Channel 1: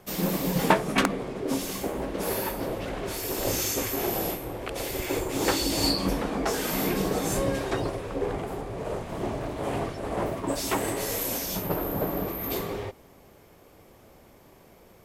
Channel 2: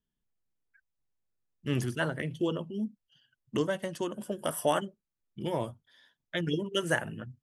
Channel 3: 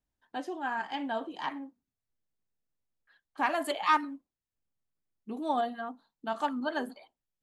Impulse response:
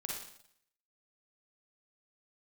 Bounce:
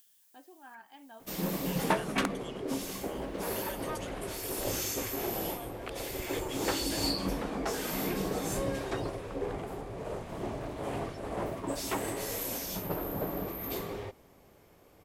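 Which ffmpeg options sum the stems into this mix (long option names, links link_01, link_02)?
-filter_complex "[0:a]acontrast=85,adelay=1200,volume=-13dB[link_01];[1:a]aderivative,acompressor=mode=upward:threshold=-44dB:ratio=2.5,alimiter=level_in=10.5dB:limit=-24dB:level=0:latency=1,volume=-10.5dB,volume=1dB[link_02];[2:a]volume=-18dB[link_03];[link_01][link_02][link_03]amix=inputs=3:normalize=0"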